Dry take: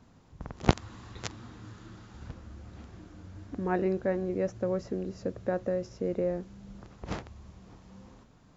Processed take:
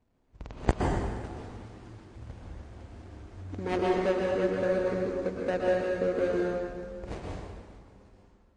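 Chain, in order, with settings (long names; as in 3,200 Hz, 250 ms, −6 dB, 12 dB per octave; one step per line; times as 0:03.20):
running median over 41 samples
parametric band 160 Hz −11 dB 1.9 octaves
noise gate −56 dBFS, range −12 dB
dense smooth reverb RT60 1.7 s, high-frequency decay 0.8×, pre-delay 105 ms, DRR −2.5 dB
level +4.5 dB
MP3 40 kbit/s 22,050 Hz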